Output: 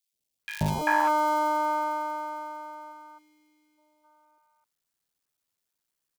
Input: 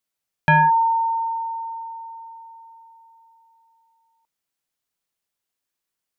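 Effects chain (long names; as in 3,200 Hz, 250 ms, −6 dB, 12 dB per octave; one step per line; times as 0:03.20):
sub-harmonics by changed cycles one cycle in 3, muted
gain on a spectral selection 0:02.79–0:03.65, 560–1,900 Hz −25 dB
in parallel at −2 dB: compressor whose output falls as the input rises −27 dBFS, ratio −1
on the sum: three-band delay without the direct sound highs, lows, mids 130/390 ms, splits 710/2,400 Hz
level −5 dB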